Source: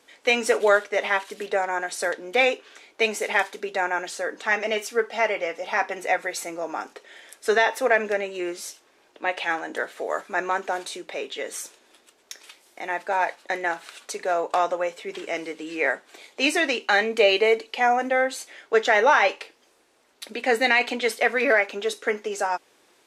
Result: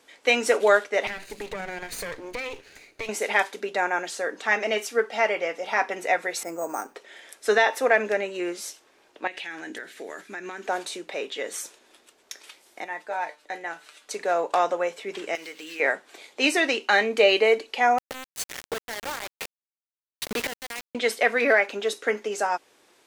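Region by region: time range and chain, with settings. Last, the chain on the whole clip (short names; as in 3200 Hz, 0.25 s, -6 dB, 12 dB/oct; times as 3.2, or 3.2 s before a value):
1.07–3.09 minimum comb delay 0.46 ms + compressor 8:1, threshold -29 dBFS
6.43–6.95 LPF 1800 Hz + careless resampling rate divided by 6×, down none, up hold
9.27–10.66 band shelf 790 Hz -10.5 dB + compressor 10:1, threshold -31 dBFS
12.84–14.11 resonator 150 Hz, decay 0.16 s, mix 80% + upward compressor, threshold -53 dBFS
15.35–15.8 median filter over 5 samples + tilt shelf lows -8 dB, about 1200 Hz + compressor 2.5:1, threshold -36 dBFS
17.98–20.95 flipped gate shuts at -18 dBFS, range -25 dB + companded quantiser 2-bit
whole clip: dry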